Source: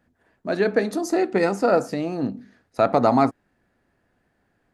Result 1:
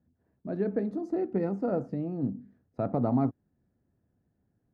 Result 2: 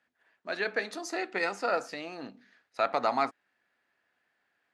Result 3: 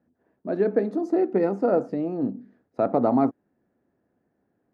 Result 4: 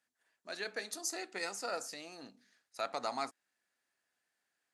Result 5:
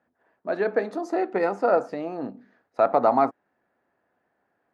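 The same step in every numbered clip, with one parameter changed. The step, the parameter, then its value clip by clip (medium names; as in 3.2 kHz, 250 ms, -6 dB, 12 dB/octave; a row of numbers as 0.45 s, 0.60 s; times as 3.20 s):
band-pass filter, frequency: 110 Hz, 2.7 kHz, 310 Hz, 7.7 kHz, 830 Hz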